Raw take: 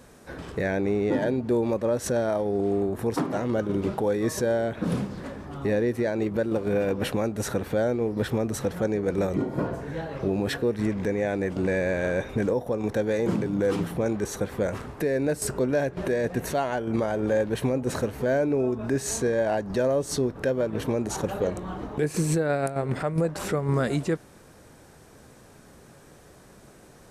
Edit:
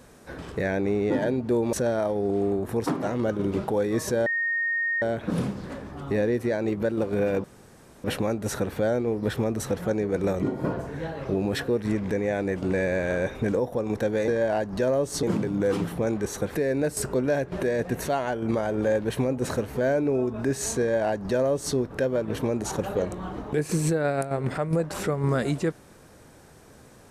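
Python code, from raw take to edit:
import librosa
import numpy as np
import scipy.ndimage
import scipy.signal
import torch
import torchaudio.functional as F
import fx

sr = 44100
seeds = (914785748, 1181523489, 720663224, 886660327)

y = fx.edit(x, sr, fx.cut(start_s=1.73, length_s=0.3),
    fx.insert_tone(at_s=4.56, length_s=0.76, hz=1850.0, db=-23.0),
    fx.insert_room_tone(at_s=6.98, length_s=0.6),
    fx.cut(start_s=14.54, length_s=0.46),
    fx.duplicate(start_s=19.25, length_s=0.95, to_s=13.22), tone=tone)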